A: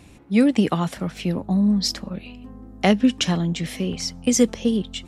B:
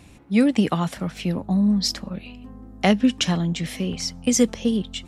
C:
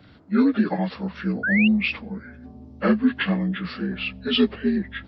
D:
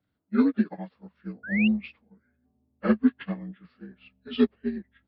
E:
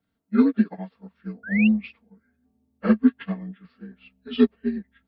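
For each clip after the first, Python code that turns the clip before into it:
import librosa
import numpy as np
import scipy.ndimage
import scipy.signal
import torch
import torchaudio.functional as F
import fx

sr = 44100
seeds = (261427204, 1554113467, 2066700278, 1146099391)

y1 = fx.peak_eq(x, sr, hz=380.0, db=-2.5, octaves=0.89)
y2 = fx.partial_stretch(y1, sr, pct=77)
y2 = fx.spec_paint(y2, sr, seeds[0], shape='rise', start_s=1.43, length_s=0.25, low_hz=1400.0, high_hz=2900.0, level_db=-23.0)
y3 = fx.high_shelf(y2, sr, hz=4100.0, db=-7.5)
y3 = fx.upward_expand(y3, sr, threshold_db=-33.0, expansion=2.5)
y4 = y3 + 0.45 * np.pad(y3, (int(4.4 * sr / 1000.0), 0))[:len(y3)]
y4 = y4 * librosa.db_to_amplitude(1.0)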